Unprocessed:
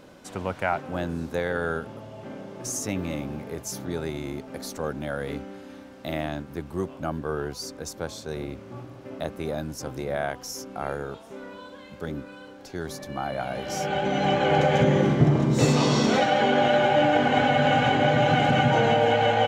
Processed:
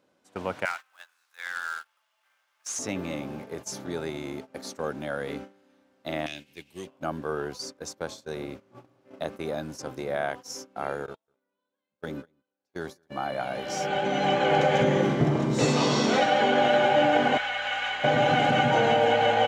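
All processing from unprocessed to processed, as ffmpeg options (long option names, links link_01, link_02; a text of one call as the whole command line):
ffmpeg -i in.wav -filter_complex "[0:a]asettb=1/sr,asplit=3[link_01][link_02][link_03];[link_01]atrim=end=0.654[link_04];[link_02]atrim=start=0.65:end=2.79,asetpts=PTS-STARTPTS,afade=type=in:duration=0.004:curve=qsin,afade=type=out:start_time=2.136:duration=0.004:curve=qsin,highpass=frequency=1200:width=0.5412,highpass=frequency=1200:width=1.3066,acrusher=bits=2:mode=log:mix=0:aa=0.000001[link_05];[link_03]atrim=start=2.786[link_06];[link_04][link_05]acrossfade=duration=0.004:curve1=hsin:curve2=qsin[link_07];[link_07][link_06]acrossfade=duration=0.004:curve1=qsin:curve2=hsin,asettb=1/sr,asplit=3[link_08][link_09][link_10];[link_08]atrim=end=6.264[link_11];[link_09]atrim=start=6.26:end=6.87,asetpts=PTS-STARTPTS,afade=type=in:duration=0.004:curve=qsin,afade=type=out:start_time=0.606:duration=0.004:curve=qsin,highshelf=frequency=1800:width_type=q:width=3:gain=12.5,acompressor=threshold=-37dB:ratio=2:attack=3.2:release=140:knee=1:detection=peak,aeval=exprs='clip(val(0),-1,0.0473)':channel_layout=same[link_12];[link_10]atrim=start=6.866[link_13];[link_11][link_12]acrossfade=duration=0.004:curve1=hsin:curve2=qsin[link_14];[link_14][link_13]acrossfade=duration=0.004:curve1=qsin:curve2=hsin,asettb=1/sr,asplit=3[link_15][link_16][link_17];[link_15]atrim=end=11.064[link_18];[link_16]atrim=start=11.06:end=13.1,asetpts=PTS-STARTPTS,afade=type=in:duration=0.004:curve=qsin,afade=type=out:start_time=2.036:duration=0.004:curve=qsin,agate=range=-23dB:threshold=-36dB:ratio=16:release=100:detection=peak,aecho=1:1:200:0.15,atrim=end_sample=89964[link_19];[link_17]atrim=start=13.096[link_20];[link_18][link_19]acrossfade=duration=0.004:curve1=hsin:curve2=qsin[link_21];[link_21][link_20]acrossfade=duration=0.004:curve1=qsin:curve2=hsin,asettb=1/sr,asplit=3[link_22][link_23][link_24];[link_22]atrim=end=17.374[link_25];[link_23]atrim=start=17.37:end=18.04,asetpts=PTS-STARTPTS,afade=type=in:duration=0.004:curve=qsin,afade=type=out:start_time=0.666:duration=0.004:curve=qsin,highpass=1400,highshelf=frequency=4900:gain=-6,aeval=exprs='val(0)+0.00398*(sin(2*PI*60*n/s)+sin(2*PI*2*60*n/s)/2+sin(2*PI*3*60*n/s)/3+sin(2*PI*4*60*n/s)/4+sin(2*PI*5*60*n/s)/5)':channel_layout=same[link_26];[link_24]atrim=start=18.036[link_27];[link_25][link_26]acrossfade=duration=0.004:curve1=hsin:curve2=qsin[link_28];[link_28][link_27]acrossfade=duration=0.004:curve1=qsin:curve2=hsin,agate=range=-18dB:threshold=-36dB:ratio=16:detection=peak,highpass=frequency=240:poles=1,acrossover=split=8900[link_29][link_30];[link_30]acompressor=threshold=-59dB:ratio=4:attack=1:release=60[link_31];[link_29][link_31]amix=inputs=2:normalize=0" out.wav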